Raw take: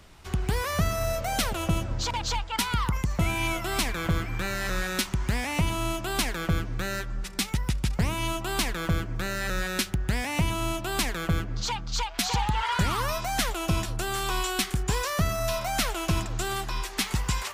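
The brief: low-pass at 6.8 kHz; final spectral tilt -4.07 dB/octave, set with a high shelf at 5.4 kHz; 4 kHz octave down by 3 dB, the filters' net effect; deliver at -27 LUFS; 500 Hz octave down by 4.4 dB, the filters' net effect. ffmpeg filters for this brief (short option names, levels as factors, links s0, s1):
-af "lowpass=6800,equalizer=f=500:t=o:g=-6.5,equalizer=f=4000:t=o:g=-6,highshelf=f=5400:g=6.5,volume=1.33"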